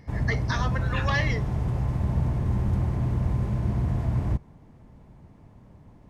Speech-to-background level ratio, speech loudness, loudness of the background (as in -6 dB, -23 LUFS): -4.0 dB, -31.0 LUFS, -27.0 LUFS